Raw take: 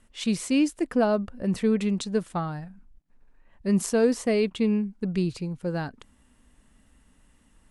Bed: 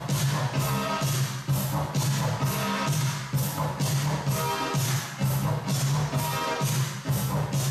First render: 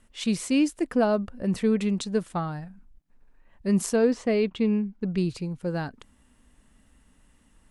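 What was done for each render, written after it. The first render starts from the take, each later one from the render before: 3.96–5.18 air absorption 100 m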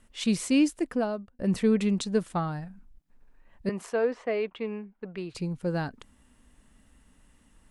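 0.68–1.39 fade out; 3.69–5.35 three-band isolator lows -16 dB, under 420 Hz, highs -16 dB, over 2900 Hz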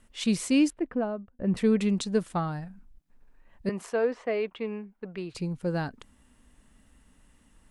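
0.7–1.57 air absorption 470 m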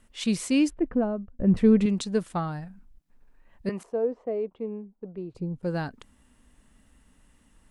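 0.69–1.86 tilt -2.5 dB/oct; 3.83–5.63 EQ curve 470 Hz 0 dB, 940 Hz -7 dB, 1700 Hz -19 dB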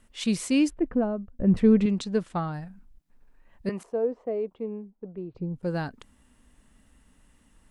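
1.6–2.54 air absorption 59 m; 4.9–5.54 air absorption 220 m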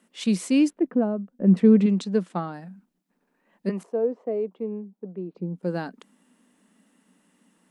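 elliptic high-pass 180 Hz, stop band 40 dB; low shelf 410 Hz +5 dB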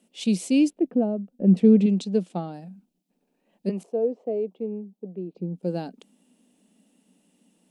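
band shelf 1400 Hz -11.5 dB 1.3 oct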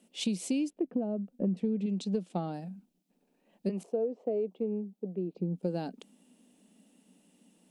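compressor 16:1, threshold -27 dBFS, peak gain reduction 16.5 dB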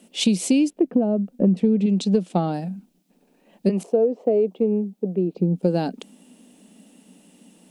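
gain +12 dB

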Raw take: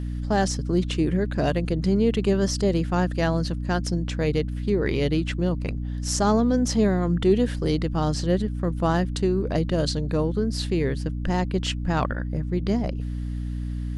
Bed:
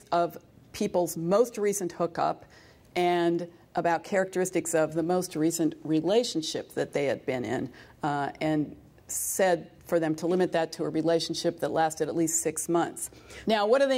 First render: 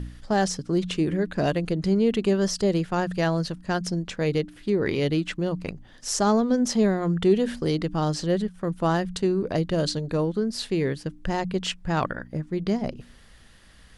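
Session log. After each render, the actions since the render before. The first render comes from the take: de-hum 60 Hz, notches 5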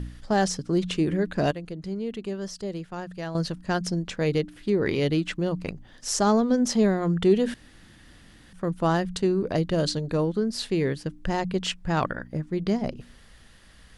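1.51–3.35 gain -10 dB; 7.54–8.53 room tone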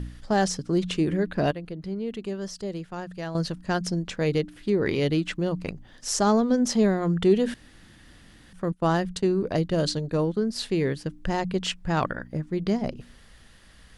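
1.25–2.08 bell 7200 Hz -9.5 dB 0.73 oct; 8.72–10.56 expander -32 dBFS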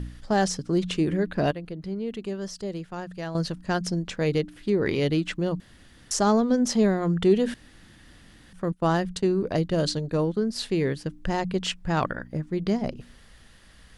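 5.6–6.11 room tone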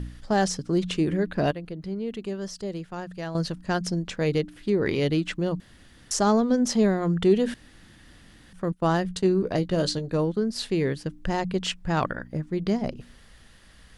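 9.03–10.14 doubler 16 ms -11 dB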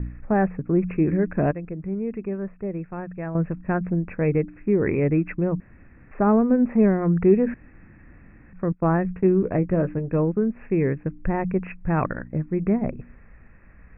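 Chebyshev low-pass 2600 Hz, order 10; low shelf 340 Hz +6 dB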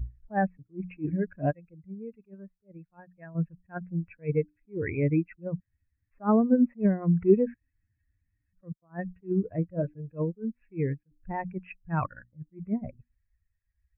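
per-bin expansion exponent 2; attack slew limiter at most 330 dB/s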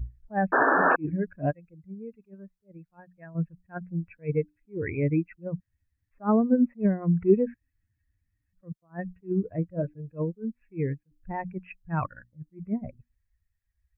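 0.52–0.96 painted sound noise 240–1800 Hz -21 dBFS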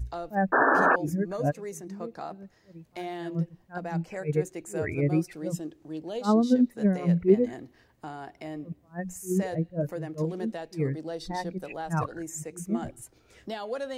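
add bed -11 dB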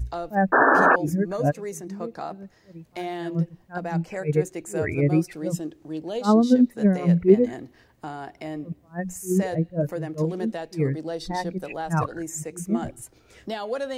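gain +4.5 dB

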